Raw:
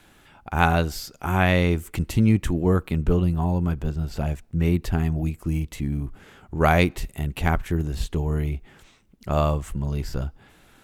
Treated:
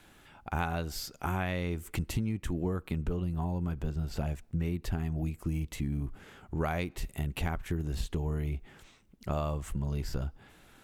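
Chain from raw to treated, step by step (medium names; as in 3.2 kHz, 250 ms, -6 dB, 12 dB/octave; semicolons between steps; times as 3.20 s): compression 12:1, threshold -24 dBFS, peak gain reduction 12 dB; trim -3.5 dB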